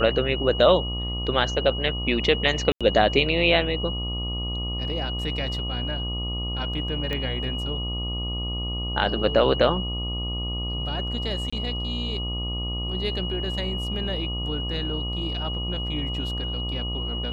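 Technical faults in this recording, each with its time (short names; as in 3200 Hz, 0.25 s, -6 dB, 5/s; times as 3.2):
buzz 60 Hz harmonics 21 -30 dBFS
tone 2900 Hz -31 dBFS
2.72–2.81 gap 86 ms
7.13 pop -16 dBFS
11.5–11.53 gap 25 ms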